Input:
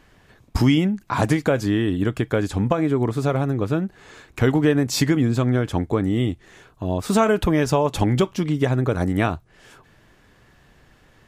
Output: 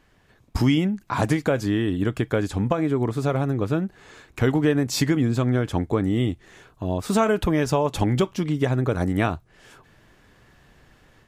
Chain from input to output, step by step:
automatic gain control gain up to 5.5 dB
level −6 dB

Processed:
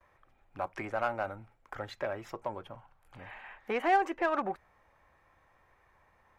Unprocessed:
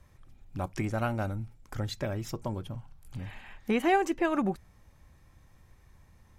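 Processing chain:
noise gate with hold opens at −54 dBFS
three-way crossover with the lows and the highs turned down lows −20 dB, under 460 Hz, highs −19 dB, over 2,400 Hz
in parallel at −3 dB: soft clipping −32.5 dBFS, distortion −7 dB

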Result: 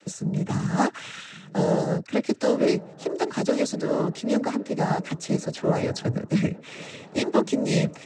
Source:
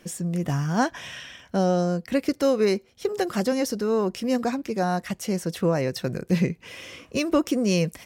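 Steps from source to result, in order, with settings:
cochlear-implant simulation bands 12
delay with a low-pass on its return 1,110 ms, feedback 60%, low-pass 2,000 Hz, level −21 dB

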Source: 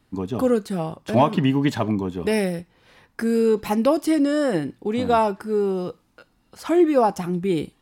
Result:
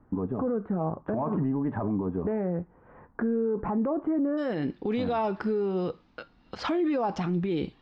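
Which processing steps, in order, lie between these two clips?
inverse Chebyshev low-pass filter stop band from 4,500 Hz, stop band 60 dB, from 0:04.37 stop band from 12,000 Hz
transient designer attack +5 dB, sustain −2 dB
brickwall limiter −25.5 dBFS, peak gain reduction 22 dB
flanger 1.2 Hz, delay 3.6 ms, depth 1.1 ms, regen −84%
level +9 dB

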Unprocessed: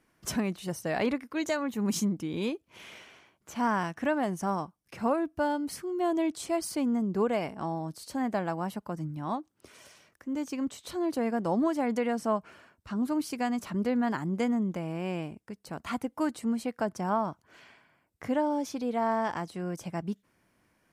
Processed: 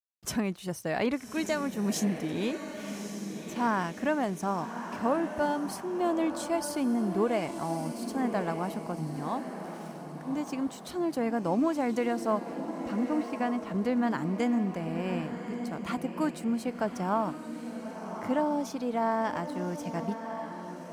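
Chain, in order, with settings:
0:12.94–0:13.71: low-pass filter 2,900 Hz 12 dB per octave
dead-zone distortion −59 dBFS
feedback delay with all-pass diffusion 1,155 ms, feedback 42%, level −8 dB

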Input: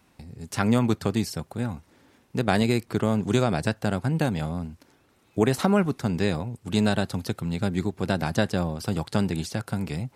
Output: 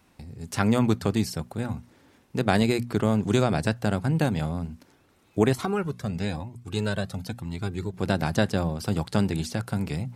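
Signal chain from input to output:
low-shelf EQ 140 Hz +3 dB
mains-hum notches 60/120/180/240 Hz
0:05.53–0:07.94: flanger whose copies keep moving one way rising 1 Hz

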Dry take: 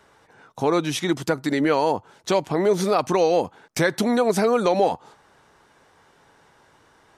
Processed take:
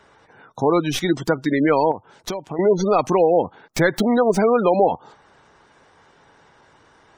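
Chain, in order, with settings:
stylus tracing distortion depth 0.054 ms
gate on every frequency bin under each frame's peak −25 dB strong
0:01.91–0:02.59: downward compressor 5 to 1, threshold −29 dBFS, peak gain reduction 12.5 dB
level +3 dB

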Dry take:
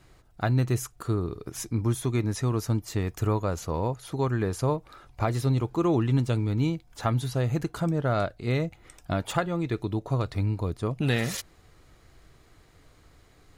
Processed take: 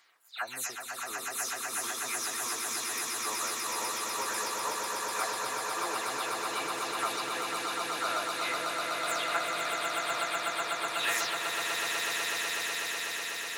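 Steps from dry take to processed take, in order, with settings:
every frequency bin delayed by itself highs early, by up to 201 ms
high-pass filter 1,300 Hz 12 dB per octave
on a send: echo that builds up and dies away 124 ms, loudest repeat 8, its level −5 dB
on the sum: level +1.5 dB

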